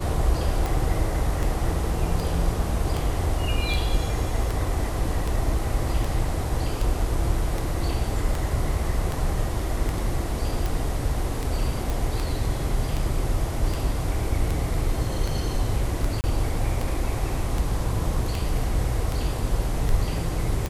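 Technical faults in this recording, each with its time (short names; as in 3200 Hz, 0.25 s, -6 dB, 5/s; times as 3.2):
tick 78 rpm
11.9 pop
16.21–16.24 gap 29 ms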